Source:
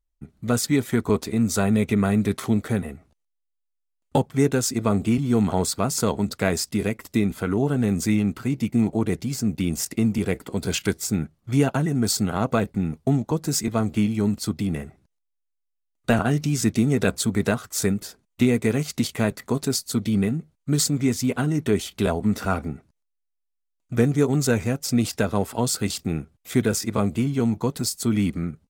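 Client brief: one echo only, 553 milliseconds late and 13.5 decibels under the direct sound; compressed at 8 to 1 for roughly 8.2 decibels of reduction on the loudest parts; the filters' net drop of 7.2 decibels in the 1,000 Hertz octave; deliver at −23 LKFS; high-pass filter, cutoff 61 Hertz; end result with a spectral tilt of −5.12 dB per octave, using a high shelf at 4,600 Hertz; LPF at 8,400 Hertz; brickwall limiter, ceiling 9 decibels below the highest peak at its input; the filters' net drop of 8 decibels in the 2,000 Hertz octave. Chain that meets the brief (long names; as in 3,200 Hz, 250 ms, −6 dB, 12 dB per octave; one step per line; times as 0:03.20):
high-pass filter 61 Hz
low-pass filter 8,400 Hz
parametric band 1,000 Hz −8.5 dB
parametric band 2,000 Hz −7 dB
high-shelf EQ 4,600 Hz −3 dB
downward compressor 8 to 1, threshold −24 dBFS
brickwall limiter −21.5 dBFS
single-tap delay 553 ms −13.5 dB
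level +9 dB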